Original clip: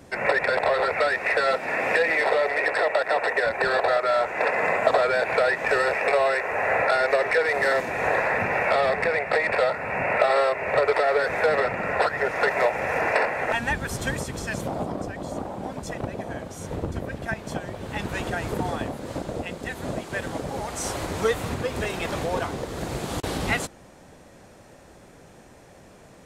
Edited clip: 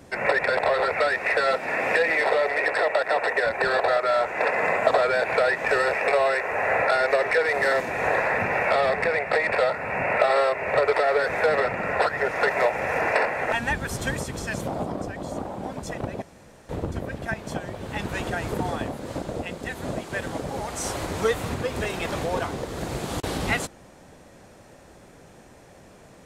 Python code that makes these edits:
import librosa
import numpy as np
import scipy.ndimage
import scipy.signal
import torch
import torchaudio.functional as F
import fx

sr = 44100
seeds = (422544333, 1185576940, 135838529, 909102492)

y = fx.edit(x, sr, fx.room_tone_fill(start_s=16.22, length_s=0.47), tone=tone)